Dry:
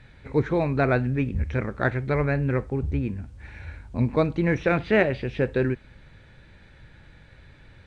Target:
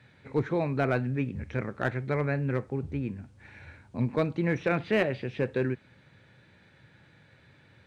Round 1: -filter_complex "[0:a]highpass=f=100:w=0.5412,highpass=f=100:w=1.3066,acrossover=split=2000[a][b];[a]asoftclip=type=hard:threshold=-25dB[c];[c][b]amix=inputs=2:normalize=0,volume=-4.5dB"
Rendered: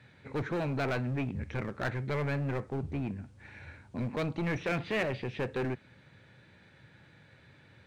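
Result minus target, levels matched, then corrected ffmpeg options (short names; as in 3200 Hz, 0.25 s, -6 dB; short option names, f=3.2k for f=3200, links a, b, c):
hard clip: distortion +14 dB
-filter_complex "[0:a]highpass=f=100:w=0.5412,highpass=f=100:w=1.3066,acrossover=split=2000[a][b];[a]asoftclip=type=hard:threshold=-14dB[c];[c][b]amix=inputs=2:normalize=0,volume=-4.5dB"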